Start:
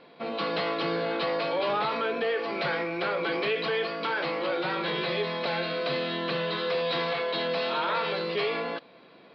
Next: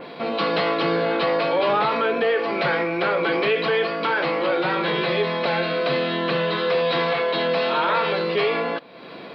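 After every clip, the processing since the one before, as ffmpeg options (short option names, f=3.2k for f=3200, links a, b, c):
-af "acompressor=mode=upward:threshold=-36dB:ratio=2.5,adynamicequalizer=threshold=0.00355:dfrequency=4800:dqfactor=1.1:tfrequency=4800:tqfactor=1.1:attack=5:release=100:ratio=0.375:range=2.5:mode=cutabove:tftype=bell,volume=7.5dB"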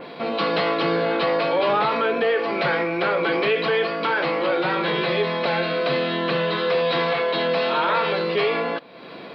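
-af anull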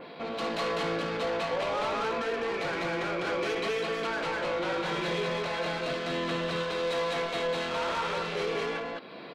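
-af "asoftclip=type=tanh:threshold=-23dB,aecho=1:1:58.31|201.2:0.251|0.891,volume=-7dB"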